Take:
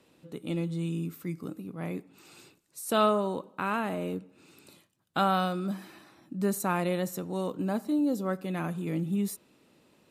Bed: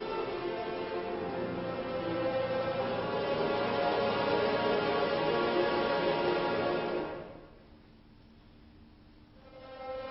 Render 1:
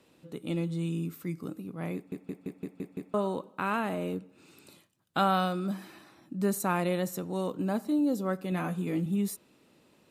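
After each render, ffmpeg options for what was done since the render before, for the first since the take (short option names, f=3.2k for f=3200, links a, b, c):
-filter_complex "[0:a]asettb=1/sr,asplit=3[a][b][c];[a]atrim=end=8.504[d];[b]atrim=start=8.5:end=9.06,asetpts=PTS-STARTPTS,afade=t=in:d=0.004:c=qsin,afade=t=out:st=0.556:d=0.004:c=qsin,asplit=2[e][f];[f]adelay=16,volume=-6dB[g];[e][g]amix=inputs=2:normalize=0,atrim=end_sample=24696[h];[c]atrim=start=9.056[i];[d][h]acrossfade=d=0.004:c1=hsin:c2=qsin[j];[j][i]acrossfade=d=0.004:c1=qsin:c2=hsin,asplit=8[k][l][m][n][o][p][q][r];[k]atrim=end=2.122[s];[l]atrim=start=1.948:end=2.122[t];[m]atrim=start=1.948:end=2.122[u];[n]atrim=start=1.948:end=2.122[v];[o]atrim=start=1.948:end=2.122[w];[p]atrim=start=1.948:end=2.122[x];[q]atrim=start=1.948:end=2.122[y];[r]atrim=start=3.138[z];[s][t]acrossfade=d=0.004:c1=hsin:c2=hsin[aa];[aa][u]acrossfade=d=0.004:c1=hsin:c2=hsin[ab];[ab][v]acrossfade=d=0.004:c1=hsin:c2=hsin[ac];[ac][w]acrossfade=d=0.004:c1=hsin:c2=hsin[ad];[ad][x]acrossfade=d=0.004:c1=hsin:c2=hsin[ae];[ae][y]acrossfade=d=0.004:c1=hsin:c2=hsin[af];[af][z]acrossfade=d=0.004:c1=hsin:c2=hsin"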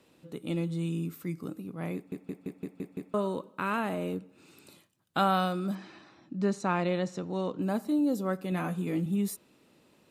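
-filter_complex "[0:a]asettb=1/sr,asplit=3[a][b][c];[a]atrim=end=3.094[d];[b]atrim=start=3.09:end=3.78,asetpts=PTS-STARTPTS,afade=t=in:d=0.004:c=qsin,afade=t=out:st=0.686:d=0.004:c=qsin,equalizer=f=770:w=6.8:g=-8.5[e];[c]atrim=start=3.776[f];[d][e]acrossfade=d=0.004:c1=hsin:c2=qsin[g];[g][f]acrossfade=d=0.004:c1=qsin:c2=hsin,asettb=1/sr,asplit=3[h][i][j];[h]atrim=end=5.754[k];[i]atrim=start=5.75:end=7.62,asetpts=PTS-STARTPTS,afade=t=in:d=0.004:c=qsin,afade=t=out:st=1.866:d=0.004:c=qsin,lowpass=f=6.1k:w=0.5412,lowpass=f=6.1k:w=1.3066[l];[j]atrim=start=7.616[m];[k][l]acrossfade=d=0.004:c1=hsin:c2=qsin[n];[n][m]acrossfade=d=0.004:c1=qsin:c2=hsin"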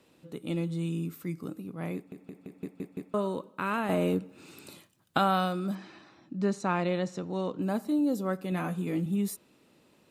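-filter_complex "[0:a]asettb=1/sr,asplit=3[a][b][c];[a]atrim=end=2.064[d];[b]atrim=start=2.06:end=2.55,asetpts=PTS-STARTPTS,afade=t=in:d=0.004:c=qsin,afade=t=out:st=0.486:d=0.004:c=qsin,acompressor=threshold=-38dB:ratio=6:attack=3.2:release=140:knee=1:detection=peak[e];[c]atrim=start=2.546[f];[d][e]acrossfade=d=0.004:c1=hsin:c2=qsin[g];[g][f]acrossfade=d=0.004:c1=qsin:c2=hsin,asettb=1/sr,asplit=3[h][i][j];[h]atrim=end=3.894[k];[i]atrim=start=3.89:end=5.18,asetpts=PTS-STARTPTS,afade=t=in:d=0.004:c=qsin,afade=t=out:st=1.286:d=0.004:c=qsin,acontrast=59[l];[j]atrim=start=5.176[m];[k][l]acrossfade=d=0.004:c1=hsin:c2=qsin[n];[n][m]acrossfade=d=0.004:c1=qsin:c2=hsin"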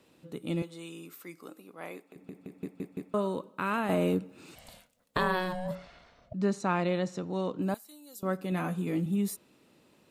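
-filter_complex "[0:a]asettb=1/sr,asplit=3[a][b][c];[a]atrim=end=0.624[d];[b]atrim=start=0.62:end=2.16,asetpts=PTS-STARTPTS,afade=t=in:d=0.004:c=qsin,afade=t=out:st=1.536:d=0.004:c=qsin,highpass=500[e];[c]atrim=start=2.156[f];[d][e]acrossfade=d=0.004:c1=hsin:c2=qsin[g];[g][f]acrossfade=d=0.004:c1=qsin:c2=hsin,asettb=1/sr,asplit=3[h][i][j];[h]atrim=end=4.554[k];[i]atrim=start=4.55:end=6.34,asetpts=PTS-STARTPTS,afade=t=in:d=0.004:c=qsin,afade=t=out:st=1.786:d=0.004:c=qsin,aeval=exprs='val(0)*sin(2*PI*370*n/s)':c=same[l];[j]atrim=start=6.336[m];[k][l]acrossfade=d=0.004:c1=hsin:c2=qsin[n];[n][m]acrossfade=d=0.004:c1=qsin:c2=hsin,asettb=1/sr,asplit=3[o][p][q];[o]atrim=end=7.744[r];[p]atrim=start=7.74:end=8.23,asetpts=PTS-STARTPTS,afade=t=in:d=0.004:c=qsin,afade=t=out:st=0.486:d=0.004:c=qsin,aderivative[s];[q]atrim=start=8.226[t];[r][s]acrossfade=d=0.004:c1=hsin:c2=qsin[u];[u][t]acrossfade=d=0.004:c1=qsin:c2=hsin"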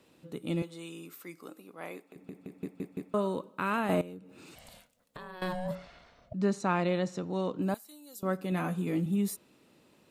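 -filter_complex "[0:a]asettb=1/sr,asplit=3[a][b][c];[a]atrim=end=4.014[d];[b]atrim=start=4.01:end=5.42,asetpts=PTS-STARTPTS,afade=t=in:d=0.004:c=qsin,afade=t=out:st=1.406:d=0.004:c=qsin,acompressor=threshold=-47dB:ratio=3:attack=3.2:release=140:knee=1:detection=peak[e];[c]atrim=start=5.416[f];[d][e]acrossfade=d=0.004:c1=hsin:c2=qsin[g];[g][f]acrossfade=d=0.004:c1=qsin:c2=hsin"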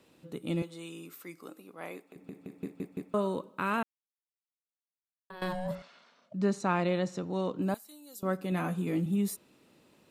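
-filter_complex "[0:a]asettb=1/sr,asplit=3[a][b][c];[a]atrim=end=2.214[d];[b]atrim=start=2.21:end=2.82,asetpts=PTS-STARTPTS,afade=t=in:d=0.004:c=qsin,afade=t=out:st=0.606:d=0.004:c=qsin,asplit=2[e][f];[f]adelay=40,volume=-11.5dB[g];[e][g]amix=inputs=2:normalize=0,atrim=end_sample=26901[h];[c]atrim=start=2.816[i];[d][h]acrossfade=d=0.004:c1=hsin:c2=qsin[j];[j][i]acrossfade=d=0.004:c1=qsin:c2=hsin,asettb=1/sr,asplit=3[k][l][m];[k]atrim=end=5.824[n];[l]atrim=start=5.82:end=6.34,asetpts=PTS-STARTPTS,afade=t=in:d=0.004:c=qsin,afade=t=out:st=0.516:d=0.004:c=qsin,highpass=f=230:w=0.5412,highpass=f=230:w=1.3066,equalizer=f=320:t=q:w=4:g=-9,equalizer=f=470:t=q:w=4:g=-5,equalizer=f=700:t=q:w=4:g=-9,equalizer=f=2k:t=q:w=4:g=-5,lowpass=f=9.1k:w=0.5412,lowpass=f=9.1k:w=1.3066[o];[m]atrim=start=6.336[p];[n][o]acrossfade=d=0.004:c1=hsin:c2=qsin[q];[q][p]acrossfade=d=0.004:c1=qsin:c2=hsin,asplit=3[r][s][t];[r]atrim=end=3.83,asetpts=PTS-STARTPTS,afade=t=out:st=3.826:d=0.004:c=hsin[u];[s]atrim=start=3.83:end=5.3,asetpts=PTS-STARTPTS,volume=0[v];[t]atrim=start=5.3,asetpts=PTS-STARTPTS,afade=t=in:d=0.004:c=hsin[w];[u][v][w]concat=n=3:v=0:a=1"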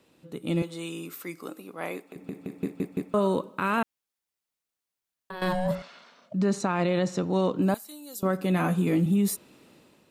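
-af "alimiter=level_in=0.5dB:limit=-24dB:level=0:latency=1:release=38,volume=-0.5dB,dynaudnorm=f=140:g=7:m=8dB"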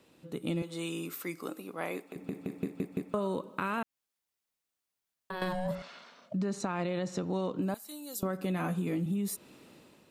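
-af "acompressor=threshold=-30dB:ratio=5"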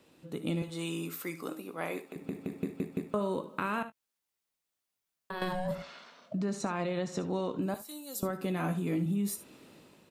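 -filter_complex "[0:a]asplit=2[a][b];[b]adelay=19,volume=-13.5dB[c];[a][c]amix=inputs=2:normalize=0,aecho=1:1:60|73:0.158|0.158"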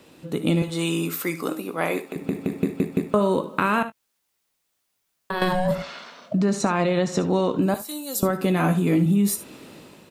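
-af "volume=11.5dB"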